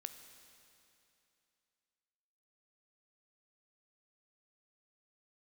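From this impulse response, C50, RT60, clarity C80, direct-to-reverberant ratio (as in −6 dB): 9.0 dB, 2.8 s, 10.0 dB, 8.5 dB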